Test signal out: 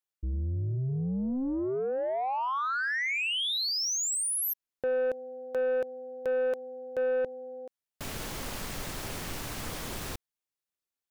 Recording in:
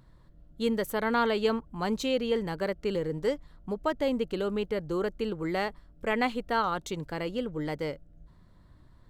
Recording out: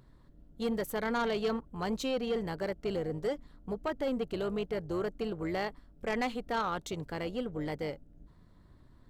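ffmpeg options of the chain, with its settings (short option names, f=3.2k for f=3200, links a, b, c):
-af "tremolo=f=260:d=0.519,asoftclip=type=tanh:threshold=-24dB"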